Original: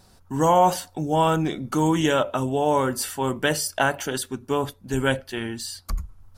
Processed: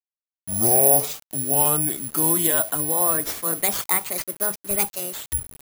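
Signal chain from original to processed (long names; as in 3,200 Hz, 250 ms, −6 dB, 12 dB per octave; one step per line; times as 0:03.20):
gliding playback speed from 60% → 167%
bit reduction 7 bits
bad sample-rate conversion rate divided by 4×, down none, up zero stuff
level −5.5 dB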